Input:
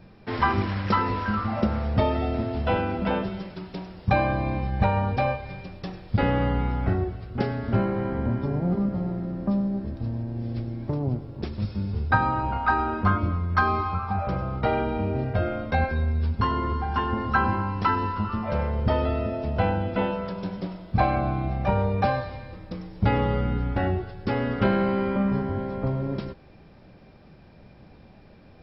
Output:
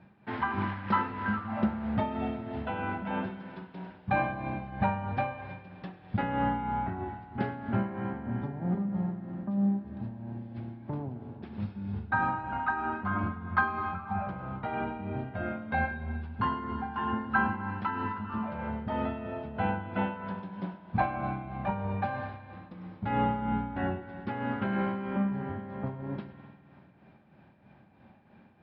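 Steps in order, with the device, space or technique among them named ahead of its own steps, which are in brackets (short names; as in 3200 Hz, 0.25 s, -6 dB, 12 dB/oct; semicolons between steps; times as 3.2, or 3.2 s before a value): combo amplifier with spring reverb and tremolo (spring tank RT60 2.1 s, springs 50 ms, chirp 20 ms, DRR 7.5 dB; tremolo 3.1 Hz, depth 54%; speaker cabinet 100–3400 Hz, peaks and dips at 210 Hz +4 dB, 470 Hz -6 dB, 870 Hz +6 dB, 1600 Hz +5 dB); gain -6 dB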